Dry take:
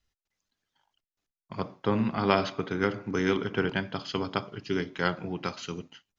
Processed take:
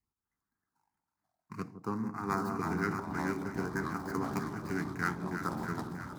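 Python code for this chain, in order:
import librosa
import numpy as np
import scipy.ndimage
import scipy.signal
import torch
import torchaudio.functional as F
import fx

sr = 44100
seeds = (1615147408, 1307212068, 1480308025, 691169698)

p1 = scipy.signal.medfilt(x, 15)
p2 = fx.filter_lfo_notch(p1, sr, shape='sine', hz=0.57, low_hz=570.0, high_hz=3200.0, q=0.97)
p3 = fx.fixed_phaser(p2, sr, hz=1400.0, stages=4)
p4 = p3 + fx.echo_alternate(p3, sr, ms=160, hz=920.0, feedback_pct=81, wet_db=-8.0, dry=0)
p5 = fx.rider(p4, sr, range_db=4, speed_s=0.5)
p6 = fx.highpass(p5, sr, hz=270.0, slope=6)
p7 = fx.echo_pitch(p6, sr, ms=290, semitones=-4, count=3, db_per_echo=-6.0)
y = fx.env_flatten(p7, sr, amount_pct=50, at=(2.32, 3.0))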